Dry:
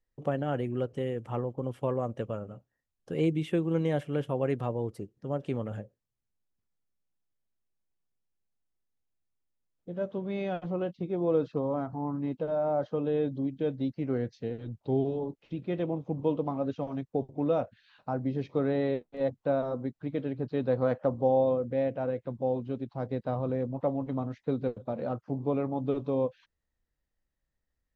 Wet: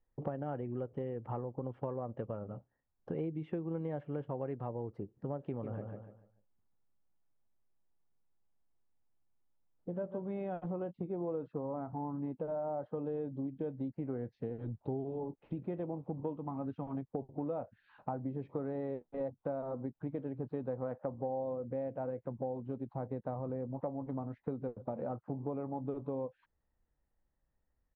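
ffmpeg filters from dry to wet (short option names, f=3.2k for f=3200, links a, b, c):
-filter_complex "[0:a]asplit=3[a][b][c];[a]afade=t=out:st=5.62:d=0.02[d];[b]aecho=1:1:146|292|438|584:0.355|0.11|0.0341|0.0106,afade=t=in:st=5.62:d=0.02,afade=t=out:st=10.28:d=0.02[e];[c]afade=t=in:st=10.28:d=0.02[f];[d][e][f]amix=inputs=3:normalize=0,asettb=1/sr,asplit=3[g][h][i];[g]atrim=end=16.334[j];[h]atrim=start=16.33:end=16.95,asetpts=PTS-STARTPTS,afade=t=in:d=0.004:c=qsin,afade=t=out:st=0.616:d=0.004:c=qsin,equalizer=f=540:w=1.5:g=-9.5[k];[i]atrim=start=16.946[l];[j][k]acrossfade=d=0.004:c1=hsin:c2=qsin[m];[m][l]acrossfade=d=0.004:c1=qsin:c2=hsin,lowpass=1.4k,equalizer=f=860:w=3.9:g=4.5,acompressor=threshold=-39dB:ratio=5,volume=3dB"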